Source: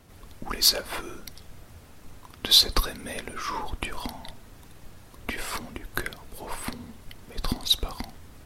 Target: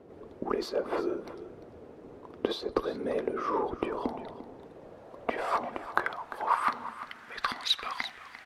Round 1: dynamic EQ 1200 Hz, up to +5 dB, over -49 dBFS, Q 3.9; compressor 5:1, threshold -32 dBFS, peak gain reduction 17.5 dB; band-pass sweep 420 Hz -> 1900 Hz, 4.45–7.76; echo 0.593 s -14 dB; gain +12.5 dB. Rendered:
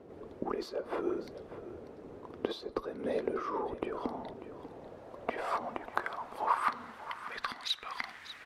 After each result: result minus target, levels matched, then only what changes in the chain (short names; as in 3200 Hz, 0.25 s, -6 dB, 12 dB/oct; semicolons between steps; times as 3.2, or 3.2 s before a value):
echo 0.246 s late; compressor: peak gain reduction +7 dB
change: echo 0.347 s -14 dB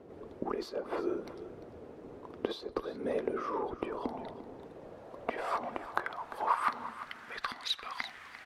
compressor: peak gain reduction +7 dB
change: compressor 5:1, threshold -23.5 dBFS, peak gain reduction 11 dB